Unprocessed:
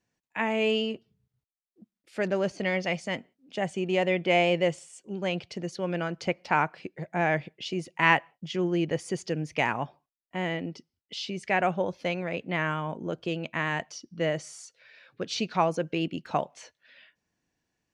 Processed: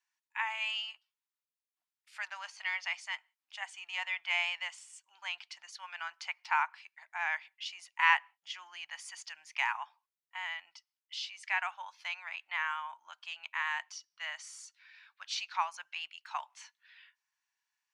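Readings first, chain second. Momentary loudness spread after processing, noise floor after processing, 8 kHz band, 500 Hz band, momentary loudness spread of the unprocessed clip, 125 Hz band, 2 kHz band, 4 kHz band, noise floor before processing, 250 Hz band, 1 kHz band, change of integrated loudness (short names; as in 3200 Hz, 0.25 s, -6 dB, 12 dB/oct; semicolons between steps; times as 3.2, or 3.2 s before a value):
16 LU, under -85 dBFS, -4.0 dB, -30.5 dB, 14 LU, under -40 dB, -3.0 dB, -3.5 dB, under -85 dBFS, under -40 dB, -6.5 dB, -7.0 dB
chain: elliptic high-pass 910 Hz, stop band 50 dB; gain -3 dB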